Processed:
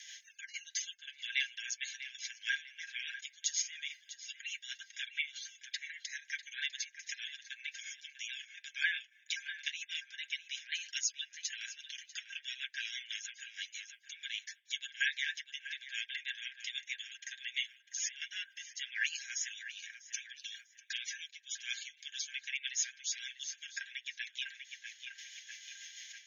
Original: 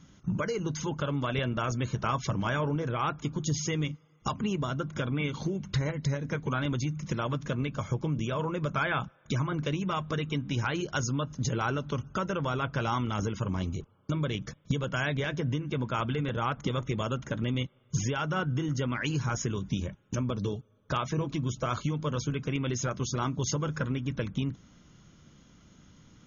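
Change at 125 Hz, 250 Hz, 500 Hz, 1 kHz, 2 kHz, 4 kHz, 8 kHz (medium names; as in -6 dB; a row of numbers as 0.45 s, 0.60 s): under -40 dB, under -40 dB, under -40 dB, under -35 dB, -1.0 dB, +1.5 dB, no reading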